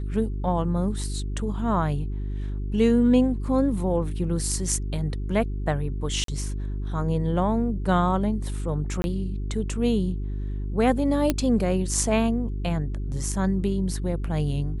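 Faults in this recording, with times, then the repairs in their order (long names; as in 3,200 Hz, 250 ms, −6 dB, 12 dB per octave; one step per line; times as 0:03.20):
mains hum 50 Hz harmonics 8 −29 dBFS
0:06.24–0:06.28: drop-out 43 ms
0:09.02–0:09.04: drop-out 21 ms
0:11.30: click −7 dBFS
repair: click removal
hum removal 50 Hz, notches 8
repair the gap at 0:06.24, 43 ms
repair the gap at 0:09.02, 21 ms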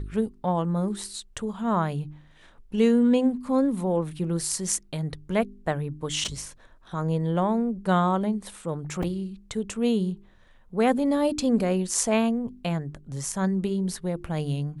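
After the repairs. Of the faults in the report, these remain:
none of them is left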